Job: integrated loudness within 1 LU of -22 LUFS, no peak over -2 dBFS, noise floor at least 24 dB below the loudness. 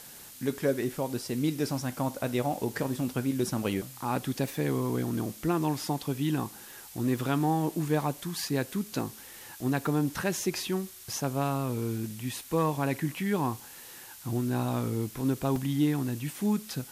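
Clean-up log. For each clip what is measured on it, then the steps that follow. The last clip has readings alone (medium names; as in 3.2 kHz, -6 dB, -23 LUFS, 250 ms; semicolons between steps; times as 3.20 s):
dropouts 2; longest dropout 2.5 ms; noise floor -48 dBFS; noise floor target -55 dBFS; loudness -30.5 LUFS; peak level -16.5 dBFS; loudness target -22.0 LUFS
-> interpolate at 11.13/15.56 s, 2.5 ms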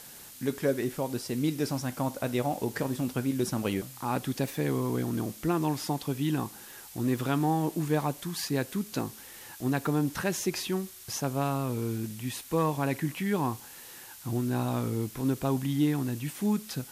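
dropouts 0; noise floor -48 dBFS; noise floor target -55 dBFS
-> noise print and reduce 7 dB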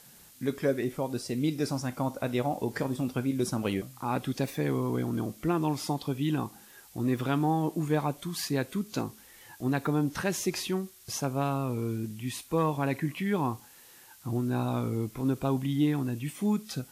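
noise floor -54 dBFS; noise floor target -55 dBFS
-> noise print and reduce 6 dB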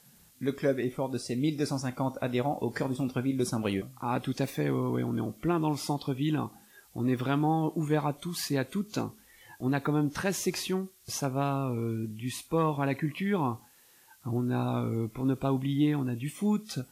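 noise floor -60 dBFS; loudness -31.0 LUFS; peak level -16.5 dBFS; loudness target -22.0 LUFS
-> trim +9 dB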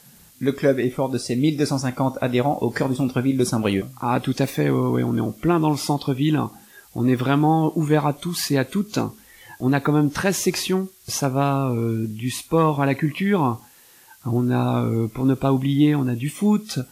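loudness -22.0 LUFS; peak level -7.5 dBFS; noise floor -51 dBFS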